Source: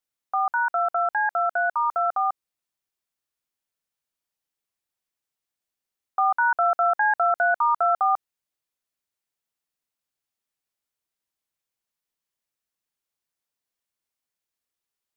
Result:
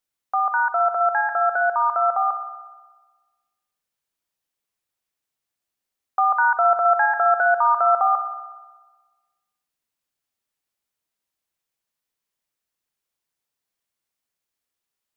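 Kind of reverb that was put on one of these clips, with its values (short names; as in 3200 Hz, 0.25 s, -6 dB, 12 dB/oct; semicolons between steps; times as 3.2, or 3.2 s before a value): spring tank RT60 1.3 s, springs 60 ms, chirp 75 ms, DRR 8.5 dB; gain +2.5 dB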